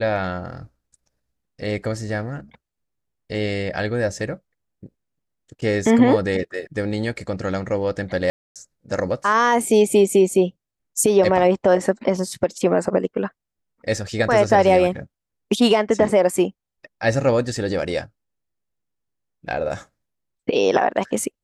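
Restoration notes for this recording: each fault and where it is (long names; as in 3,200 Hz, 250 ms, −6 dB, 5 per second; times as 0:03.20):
0:08.30–0:08.56: drop-out 257 ms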